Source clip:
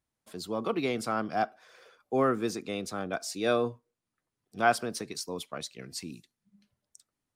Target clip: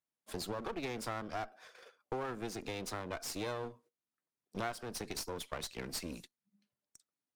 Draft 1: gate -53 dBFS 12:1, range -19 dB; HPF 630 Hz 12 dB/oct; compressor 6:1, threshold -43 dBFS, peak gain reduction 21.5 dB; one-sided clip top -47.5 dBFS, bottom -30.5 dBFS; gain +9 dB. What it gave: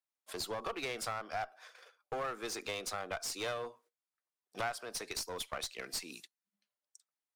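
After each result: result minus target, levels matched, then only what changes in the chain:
250 Hz band -8.0 dB; one-sided clip: distortion -4 dB
change: HPF 180 Hz 12 dB/oct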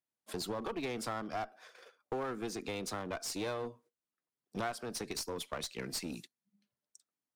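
one-sided clip: distortion -4 dB
change: one-sided clip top -59 dBFS, bottom -30.5 dBFS

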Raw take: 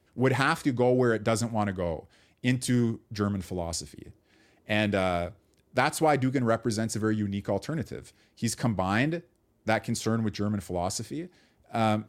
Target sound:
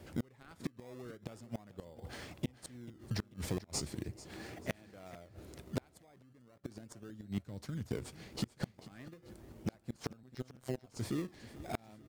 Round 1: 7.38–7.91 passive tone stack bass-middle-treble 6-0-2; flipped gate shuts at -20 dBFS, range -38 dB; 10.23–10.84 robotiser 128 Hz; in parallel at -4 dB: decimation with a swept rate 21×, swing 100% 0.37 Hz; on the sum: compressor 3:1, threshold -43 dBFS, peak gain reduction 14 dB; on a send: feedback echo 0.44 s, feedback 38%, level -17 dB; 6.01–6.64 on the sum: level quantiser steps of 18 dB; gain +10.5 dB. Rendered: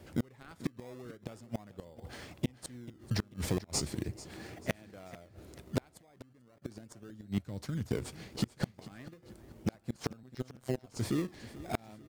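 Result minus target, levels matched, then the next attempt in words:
compressor: peak gain reduction -4.5 dB
7.38–7.91 passive tone stack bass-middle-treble 6-0-2; flipped gate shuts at -20 dBFS, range -38 dB; 10.23–10.84 robotiser 128 Hz; in parallel at -4 dB: decimation with a swept rate 21×, swing 100% 0.37 Hz; on the sum: compressor 3:1, threshold -50 dBFS, peak gain reduction 19 dB; on a send: feedback echo 0.44 s, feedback 38%, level -17 dB; 6.01–6.64 on the sum: level quantiser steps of 18 dB; gain +10.5 dB

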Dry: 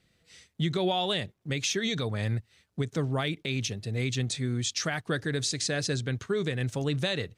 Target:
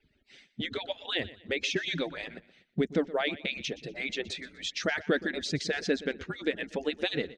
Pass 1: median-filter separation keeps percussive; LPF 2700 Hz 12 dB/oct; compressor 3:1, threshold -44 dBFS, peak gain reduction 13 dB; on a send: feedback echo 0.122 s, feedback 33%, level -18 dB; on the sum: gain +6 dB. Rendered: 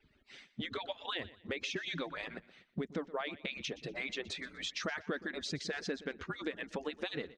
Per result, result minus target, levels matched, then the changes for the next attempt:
compressor: peak gain reduction +13 dB; 1000 Hz band +4.0 dB
remove: compressor 3:1, threshold -44 dBFS, peak gain reduction 13 dB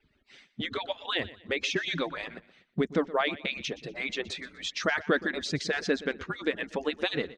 1000 Hz band +5.0 dB
add after LPF: bell 1100 Hz -11 dB 0.67 oct

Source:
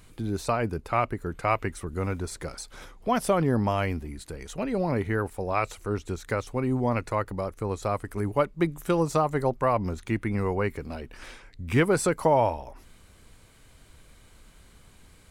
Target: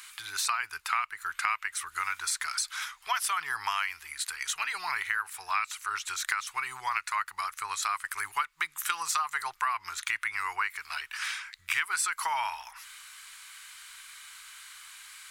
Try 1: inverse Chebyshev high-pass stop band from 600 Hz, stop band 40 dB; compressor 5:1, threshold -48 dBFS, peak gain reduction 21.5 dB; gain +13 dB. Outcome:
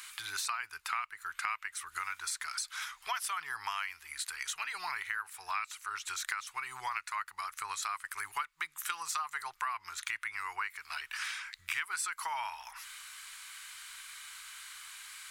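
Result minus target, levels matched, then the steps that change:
compressor: peak gain reduction +6.5 dB
change: compressor 5:1, threshold -40 dBFS, peak gain reduction 15 dB

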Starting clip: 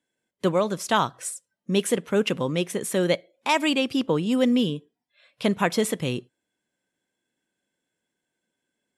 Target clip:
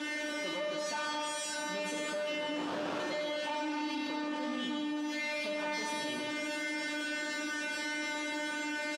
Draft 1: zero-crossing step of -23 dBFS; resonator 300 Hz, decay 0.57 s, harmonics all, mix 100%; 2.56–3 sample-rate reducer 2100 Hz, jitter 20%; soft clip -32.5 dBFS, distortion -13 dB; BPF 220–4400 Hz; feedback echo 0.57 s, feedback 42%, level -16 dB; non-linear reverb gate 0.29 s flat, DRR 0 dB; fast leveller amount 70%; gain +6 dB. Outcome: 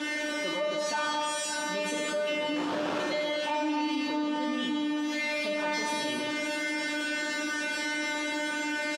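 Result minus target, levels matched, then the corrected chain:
soft clip: distortion -7 dB
zero-crossing step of -23 dBFS; resonator 300 Hz, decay 0.57 s, harmonics all, mix 100%; 2.56–3 sample-rate reducer 2100 Hz, jitter 20%; soft clip -42 dBFS, distortion -6 dB; BPF 220–4400 Hz; feedback echo 0.57 s, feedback 42%, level -16 dB; non-linear reverb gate 0.29 s flat, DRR 0 dB; fast leveller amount 70%; gain +6 dB

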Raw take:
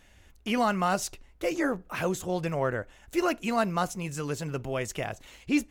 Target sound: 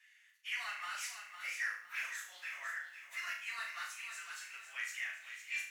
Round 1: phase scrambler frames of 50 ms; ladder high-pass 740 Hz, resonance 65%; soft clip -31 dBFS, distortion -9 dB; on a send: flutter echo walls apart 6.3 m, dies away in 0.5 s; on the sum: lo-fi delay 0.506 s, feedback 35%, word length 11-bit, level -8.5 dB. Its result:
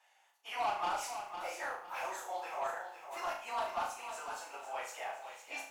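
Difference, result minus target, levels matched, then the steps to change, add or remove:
1000 Hz band +11.5 dB
change: ladder high-pass 1700 Hz, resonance 65%

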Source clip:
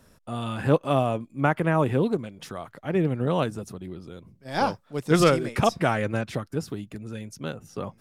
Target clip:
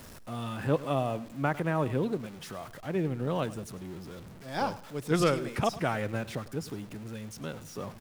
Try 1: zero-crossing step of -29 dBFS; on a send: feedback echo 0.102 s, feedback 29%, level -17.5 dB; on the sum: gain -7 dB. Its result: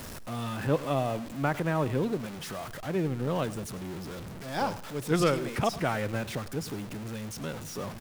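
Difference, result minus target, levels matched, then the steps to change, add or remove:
zero-crossing step: distortion +7 dB
change: zero-crossing step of -36.5 dBFS

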